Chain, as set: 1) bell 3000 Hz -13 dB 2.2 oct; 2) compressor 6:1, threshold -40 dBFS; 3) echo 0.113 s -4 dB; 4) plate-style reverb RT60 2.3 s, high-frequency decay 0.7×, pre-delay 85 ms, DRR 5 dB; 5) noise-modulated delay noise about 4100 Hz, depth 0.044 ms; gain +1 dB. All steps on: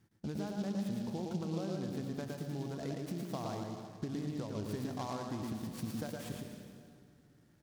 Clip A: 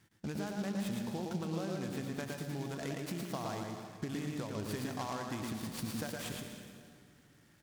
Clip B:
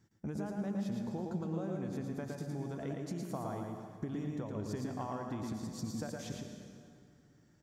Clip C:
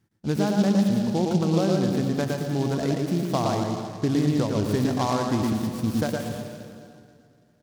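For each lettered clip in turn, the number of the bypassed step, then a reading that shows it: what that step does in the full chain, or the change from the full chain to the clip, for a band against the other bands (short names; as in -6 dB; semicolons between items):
1, 2 kHz band +6.0 dB; 5, 4 kHz band -3.5 dB; 2, mean gain reduction 14.0 dB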